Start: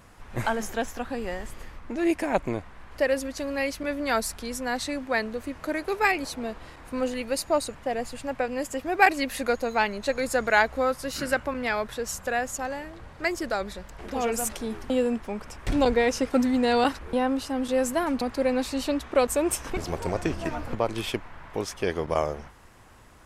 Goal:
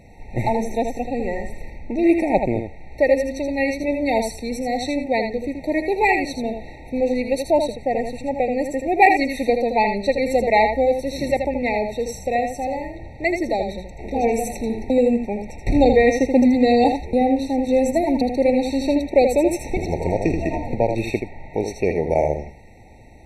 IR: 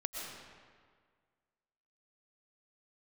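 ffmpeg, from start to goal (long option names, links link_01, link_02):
-filter_complex "[0:a]lowpass=frequency=3200:poles=1,asplit=2[link_01][link_02];[1:a]atrim=start_sample=2205,atrim=end_sample=4410,adelay=80[link_03];[link_02][link_03]afir=irnorm=-1:irlink=0,volume=-4.5dB[link_04];[link_01][link_04]amix=inputs=2:normalize=0,afftfilt=real='re*eq(mod(floor(b*sr/1024/910),2),0)':imag='im*eq(mod(floor(b*sr/1024/910),2),0)':win_size=1024:overlap=0.75,volume=7dB"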